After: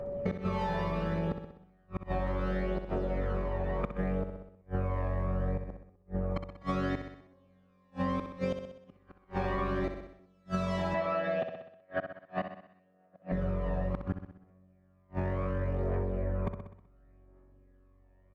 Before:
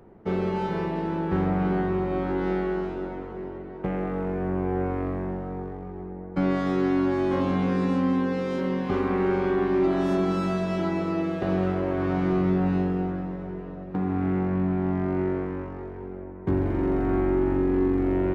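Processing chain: recorder AGC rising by 22 dB/s; phaser 0.69 Hz, delay 1.2 ms, feedback 53%; whine 570 Hz -39 dBFS; bell 340 Hz -10 dB 0.22 oct; comb 1.7 ms, depth 33%; flipped gate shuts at -16 dBFS, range -41 dB; 10.94–13.32 speaker cabinet 240–4600 Hz, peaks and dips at 390 Hz -8 dB, 660 Hz +10 dB, 1700 Hz +9 dB, 2700 Hz +3 dB; feedback echo 63 ms, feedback 51%, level -10 dB; compressor, threshold -28 dBFS, peak gain reduction 8 dB

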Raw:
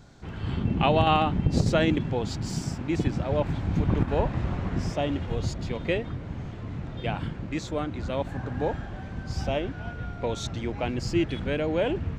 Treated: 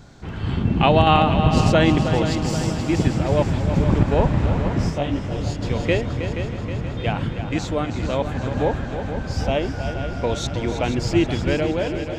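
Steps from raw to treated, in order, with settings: ending faded out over 0.67 s; multi-head echo 0.159 s, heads second and third, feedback 61%, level -10 dB; 4.89–5.61 detuned doubles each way 54 cents -> 40 cents; gain +6 dB

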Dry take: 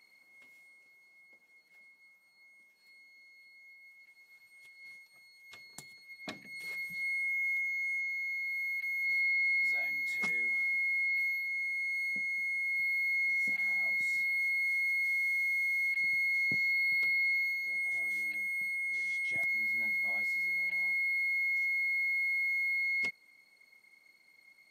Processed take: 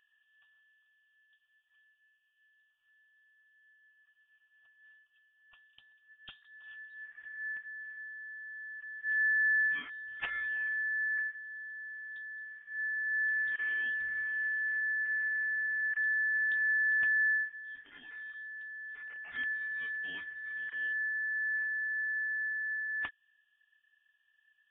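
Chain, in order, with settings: Wiener smoothing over 25 samples; HPF 1000 Hz 12 dB/oct; inverted band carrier 3900 Hz; gain +6.5 dB

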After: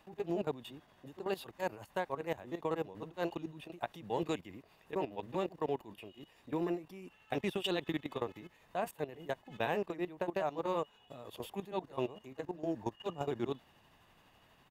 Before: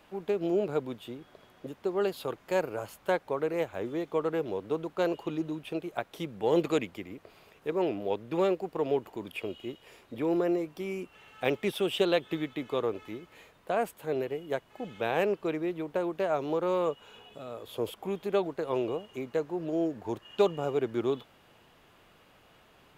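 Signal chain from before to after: comb 1.1 ms, depth 37%; level quantiser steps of 16 dB; granular stretch 0.64×, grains 0.166 s

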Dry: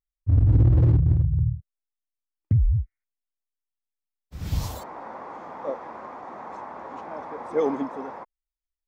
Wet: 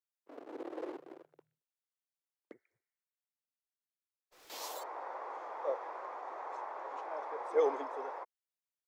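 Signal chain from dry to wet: steep high-pass 380 Hz 36 dB/oct; 2.78–4.5 tube stage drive 54 dB, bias 0.7; gain -4.5 dB

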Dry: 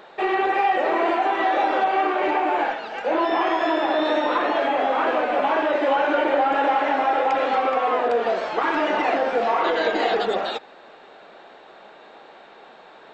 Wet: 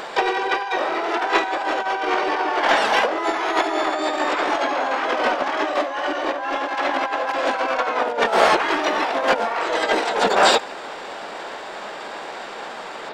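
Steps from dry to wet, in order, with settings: negative-ratio compressor -26 dBFS, ratio -0.5; harmoniser +4 st -3 dB, +12 st -6 dB; gain +4.5 dB

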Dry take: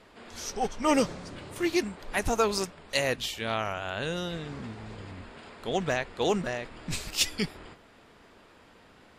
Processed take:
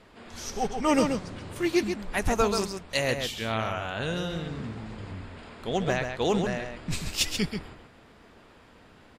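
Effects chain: tone controls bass +4 dB, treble -1 dB; outdoor echo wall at 23 m, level -6 dB

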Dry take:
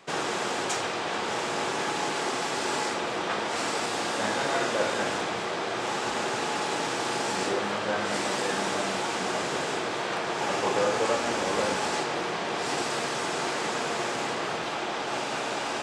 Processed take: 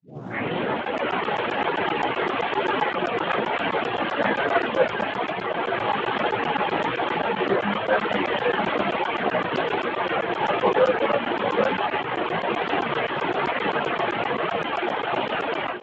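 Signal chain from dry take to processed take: tape start at the beginning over 1.32 s; Chebyshev band-pass 110–3200 Hz, order 5; AGC gain up to 13.5 dB; flange 1.1 Hz, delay 9.8 ms, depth 10 ms, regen +10%; reverb removal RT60 1.5 s; on a send: band-limited delay 0.775 s, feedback 71%, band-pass 500 Hz, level -19 dB; on the sum: crackling interface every 0.13 s, samples 512, zero, from 0.85; Speex 17 kbps 16000 Hz

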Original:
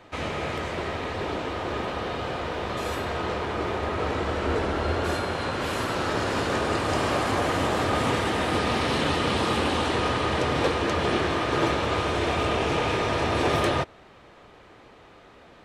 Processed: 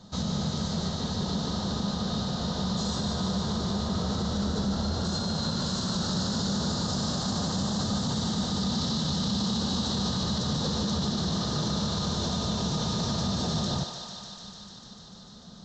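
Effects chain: EQ curve 110 Hz 0 dB, 200 Hz +14 dB, 300 Hz -10 dB, 870 Hz -8 dB, 1500 Hz -11 dB, 2400 Hz -25 dB, 3900 Hz +7 dB; limiter -23.5 dBFS, peak gain reduction 11.5 dB; on a send: thinning echo 0.149 s, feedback 83%, high-pass 480 Hz, level -7 dB; on the sum: downsampling 16000 Hz; gain +2.5 dB

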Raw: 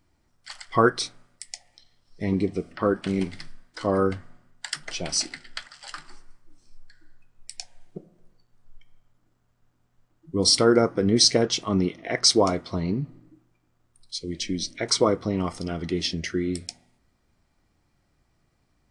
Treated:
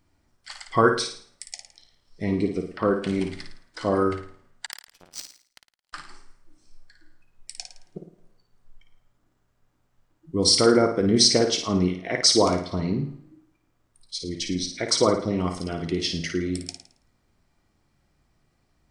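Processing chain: 4.66–5.93 power-law curve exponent 3; flutter echo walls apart 9.4 m, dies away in 0.47 s

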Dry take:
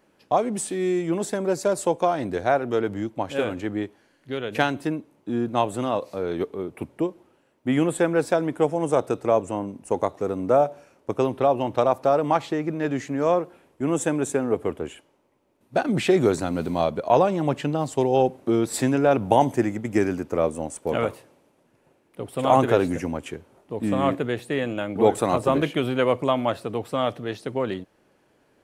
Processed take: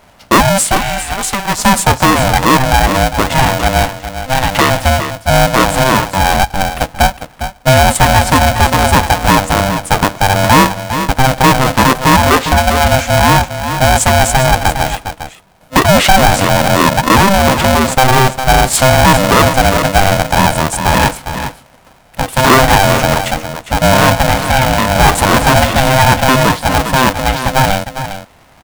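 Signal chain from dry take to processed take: 0.77–1.59 HPF 840 Hz 12 dB/oct; soft clip -17.5 dBFS, distortion -11 dB; on a send: echo 0.405 s -11 dB; on the sum: maximiser +18.5 dB; polarity switched at an audio rate 390 Hz; gain -1 dB

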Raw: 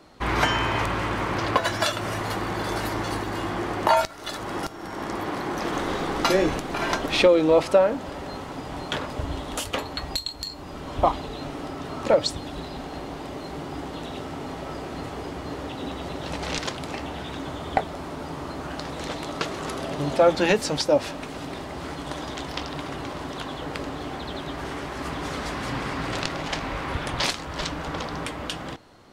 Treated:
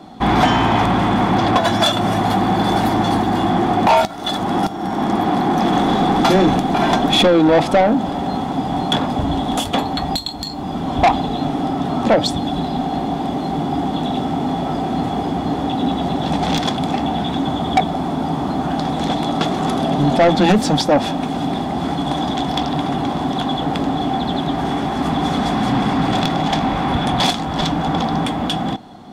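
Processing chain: small resonant body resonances 210/740/3400 Hz, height 16 dB, ringing for 25 ms; soft clip -12 dBFS, distortion -10 dB; gain +4 dB

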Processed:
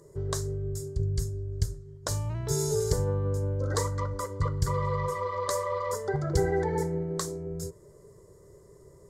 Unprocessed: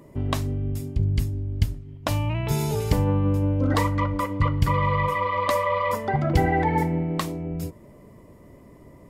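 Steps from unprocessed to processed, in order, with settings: EQ curve 160 Hz 0 dB, 260 Hz -18 dB, 400 Hz +10 dB, 710 Hz -7 dB, 1600 Hz +2 dB, 2600 Hz -18 dB, 4100 Hz +3 dB, 7200 Hz +14 dB, 14000 Hz -1 dB; gain -6 dB

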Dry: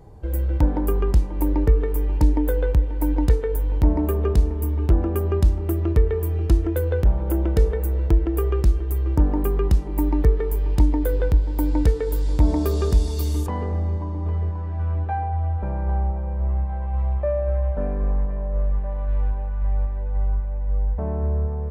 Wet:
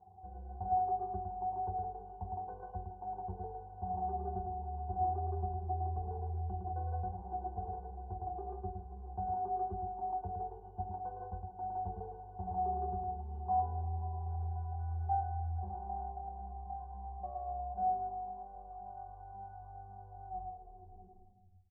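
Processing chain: tape stop at the end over 1.44 s; echo 0.194 s -20.5 dB; in parallel at +3 dB: hard clip -22.5 dBFS, distortion -6 dB; on the sum: vocal tract filter a; octave resonator F#, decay 0.23 s; on a send: echo 0.11 s -3.5 dB; on the sum: gain +10 dB

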